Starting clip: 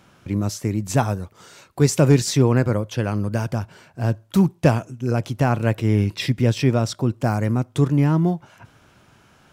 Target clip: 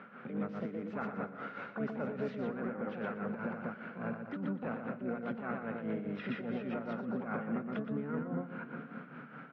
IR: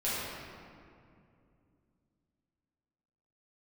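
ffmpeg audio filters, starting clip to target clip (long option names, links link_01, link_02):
-filter_complex "[0:a]asplit=4[link_01][link_02][link_03][link_04];[link_02]asetrate=22050,aresample=44100,atempo=2,volume=-17dB[link_05];[link_03]asetrate=33038,aresample=44100,atempo=1.33484,volume=-11dB[link_06];[link_04]asetrate=66075,aresample=44100,atempo=0.66742,volume=-6dB[link_07];[link_01][link_05][link_06][link_07]amix=inputs=4:normalize=0,asplit=2[link_08][link_09];[1:a]atrim=start_sample=2205[link_10];[link_09][link_10]afir=irnorm=-1:irlink=0,volume=-30dB[link_11];[link_08][link_11]amix=inputs=2:normalize=0,acompressor=threshold=-35dB:ratio=2.5,highpass=frequency=190:width=0.5412,highpass=frequency=190:width=1.3066,equalizer=frequency=230:width_type=q:width=4:gain=7,equalizer=frequency=330:width_type=q:width=4:gain=-8,equalizer=frequency=470:width_type=q:width=4:gain=5,equalizer=frequency=930:width_type=q:width=4:gain=-4,equalizer=frequency=1400:width_type=q:width=4:gain=10,lowpass=frequency=2300:width=0.5412,lowpass=frequency=2300:width=1.3066,aecho=1:1:119|238|357|476:0.596|0.185|0.0572|0.0177,alimiter=level_in=4dB:limit=-24dB:level=0:latency=1:release=32,volume=-4dB,tremolo=f=4.9:d=0.6,volume=1dB" -ar 32000 -c:a aac -b:a 48k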